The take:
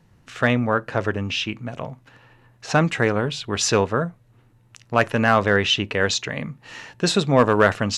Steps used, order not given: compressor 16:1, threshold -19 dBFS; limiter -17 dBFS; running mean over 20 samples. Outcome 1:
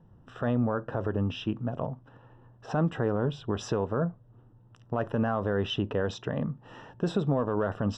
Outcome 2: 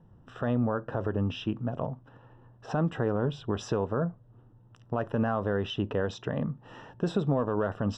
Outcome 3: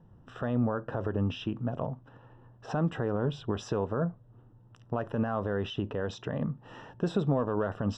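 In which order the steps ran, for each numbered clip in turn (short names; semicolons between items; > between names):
running mean > compressor > limiter; compressor > running mean > limiter; compressor > limiter > running mean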